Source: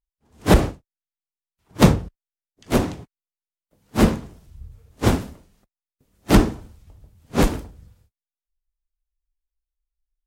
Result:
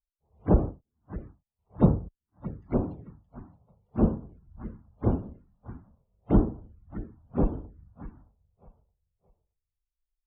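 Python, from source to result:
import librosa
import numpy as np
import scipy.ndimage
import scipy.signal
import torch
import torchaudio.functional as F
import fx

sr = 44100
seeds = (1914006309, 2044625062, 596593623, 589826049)

y = fx.spec_topn(x, sr, count=64)
y = fx.echo_feedback(y, sr, ms=620, feedback_pct=26, wet_db=-16)
y = fx.env_phaser(y, sr, low_hz=260.0, high_hz=2000.0, full_db=-20.5)
y = fx.spacing_loss(y, sr, db_at_10k=39)
y = y * 10.0 ** (-5.5 / 20.0)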